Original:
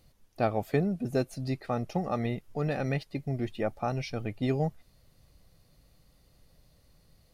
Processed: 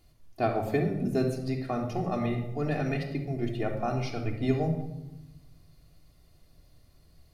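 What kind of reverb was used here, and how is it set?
shoebox room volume 3600 m³, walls furnished, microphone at 3.2 m; gain -2 dB

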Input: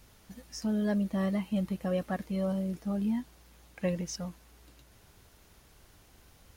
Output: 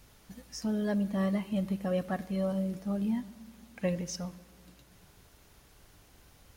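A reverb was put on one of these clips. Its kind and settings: shoebox room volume 2000 m³, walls mixed, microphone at 0.32 m

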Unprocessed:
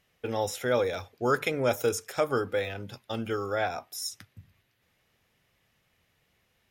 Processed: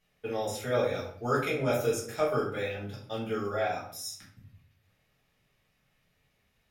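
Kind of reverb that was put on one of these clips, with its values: shoebox room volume 63 m³, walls mixed, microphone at 1.4 m; gain -9 dB

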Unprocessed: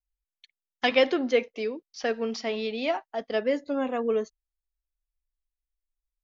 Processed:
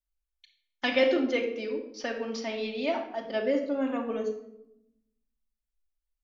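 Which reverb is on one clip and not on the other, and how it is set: shoebox room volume 2500 m³, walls furnished, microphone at 2.6 m; gain -4.5 dB

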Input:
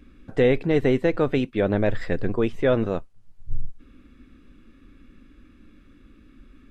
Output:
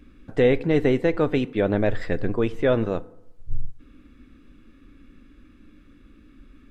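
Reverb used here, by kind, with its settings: FDN reverb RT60 0.84 s, low-frequency decay 1×, high-frequency decay 0.5×, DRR 16.5 dB

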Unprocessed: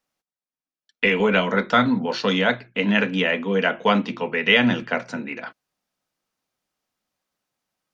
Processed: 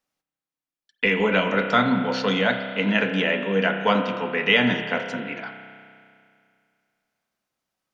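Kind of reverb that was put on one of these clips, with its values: spring tank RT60 2.3 s, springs 31 ms, chirp 60 ms, DRR 5.5 dB; gain -2 dB

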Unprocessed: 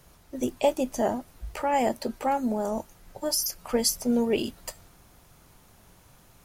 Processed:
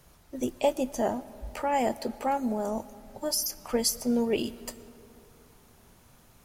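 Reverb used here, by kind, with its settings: digital reverb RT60 3.3 s, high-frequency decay 0.45×, pre-delay 75 ms, DRR 19 dB; gain -2 dB

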